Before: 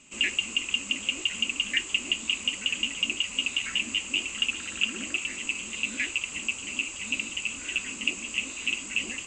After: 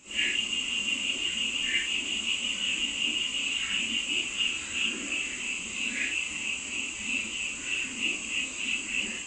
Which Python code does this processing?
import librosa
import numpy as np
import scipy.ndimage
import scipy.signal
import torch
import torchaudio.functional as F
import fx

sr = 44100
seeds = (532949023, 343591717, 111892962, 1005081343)

y = fx.phase_scramble(x, sr, seeds[0], window_ms=200)